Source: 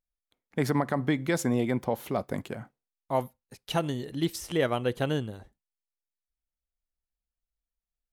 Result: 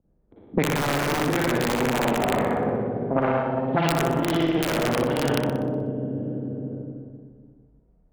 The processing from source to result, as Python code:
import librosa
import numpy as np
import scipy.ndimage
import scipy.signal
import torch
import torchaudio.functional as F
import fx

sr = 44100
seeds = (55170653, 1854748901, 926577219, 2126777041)

p1 = fx.quant_float(x, sr, bits=2)
p2 = fx.filter_lfo_lowpass(p1, sr, shape='sine', hz=6.9, low_hz=260.0, high_hz=2800.0, q=1.3)
p3 = fx.rev_schroeder(p2, sr, rt60_s=2.2, comb_ms=38, drr_db=-10.0)
p4 = fx.cheby_harmonics(p3, sr, harmonics=(8,), levels_db=(-18,), full_scale_db=-4.0)
p5 = fx.env_lowpass(p4, sr, base_hz=350.0, full_db=-10.0)
p6 = fx.highpass(p5, sr, hz=120.0, slope=6)
p7 = fx.high_shelf(p6, sr, hz=4300.0, db=-4.5)
p8 = (np.mod(10.0 ** (9.5 / 20.0) * p7 + 1.0, 2.0) - 1.0) / 10.0 ** (9.5 / 20.0)
p9 = fx.over_compress(p8, sr, threshold_db=-22.0, ratio=-1.0)
p10 = p9 + fx.room_flutter(p9, sr, wall_m=10.5, rt60_s=0.49, dry=0)
p11 = fx.band_squash(p10, sr, depth_pct=100)
y = p11 * librosa.db_to_amplitude(-2.5)